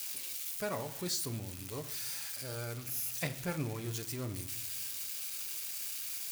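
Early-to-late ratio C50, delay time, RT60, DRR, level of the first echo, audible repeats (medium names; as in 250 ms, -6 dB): 14.0 dB, no echo, 0.60 s, 8.0 dB, no echo, no echo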